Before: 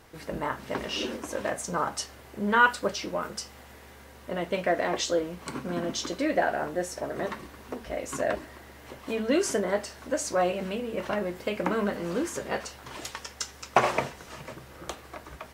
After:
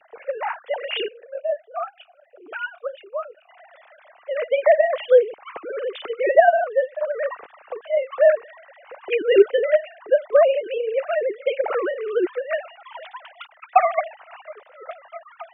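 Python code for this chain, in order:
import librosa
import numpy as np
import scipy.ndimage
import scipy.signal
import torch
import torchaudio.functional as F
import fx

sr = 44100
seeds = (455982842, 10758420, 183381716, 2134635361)

y = fx.sine_speech(x, sr)
y = fx.peak_eq(y, sr, hz=720.0, db=2.5, octaves=0.77)
y = fx.vowel_sweep(y, sr, vowels='a-e', hz=2.9, at=(1.08, 3.49))
y = y * librosa.db_to_amplitude(7.5)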